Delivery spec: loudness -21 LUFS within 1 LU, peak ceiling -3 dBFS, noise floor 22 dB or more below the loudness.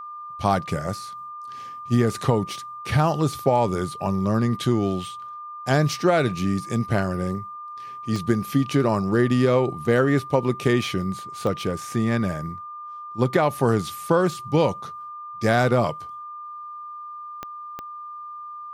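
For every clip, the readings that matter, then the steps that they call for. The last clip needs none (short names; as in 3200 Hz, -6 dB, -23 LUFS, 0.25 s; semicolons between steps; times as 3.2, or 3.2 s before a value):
clicks 4; steady tone 1200 Hz; tone level -34 dBFS; loudness -23.0 LUFS; peak -6.0 dBFS; loudness target -21.0 LUFS
-> de-click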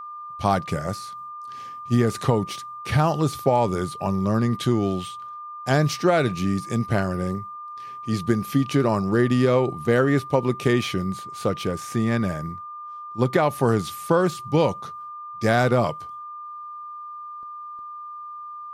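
clicks 0; steady tone 1200 Hz; tone level -34 dBFS
-> notch 1200 Hz, Q 30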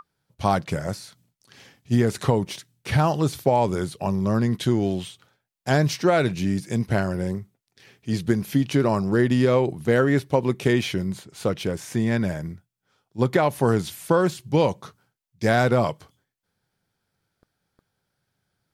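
steady tone none; loudness -23.0 LUFS; peak -6.0 dBFS; loudness target -21.0 LUFS
-> gain +2 dB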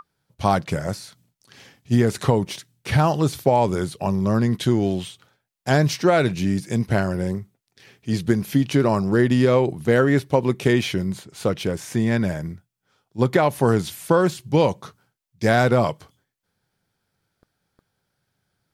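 loudness -21.0 LUFS; peak -4.0 dBFS; noise floor -78 dBFS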